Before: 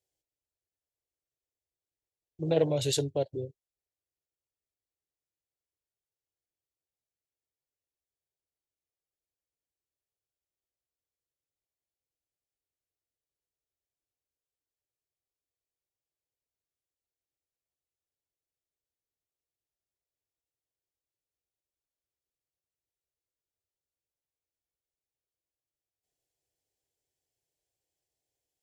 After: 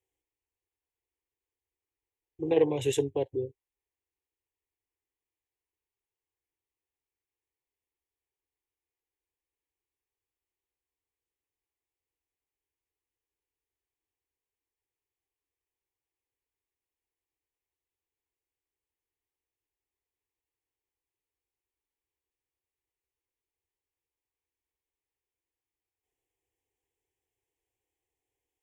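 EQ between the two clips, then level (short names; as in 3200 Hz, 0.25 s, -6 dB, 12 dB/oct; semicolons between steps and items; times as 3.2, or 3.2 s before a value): high shelf 6300 Hz -9.5 dB; fixed phaser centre 920 Hz, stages 8; +5.0 dB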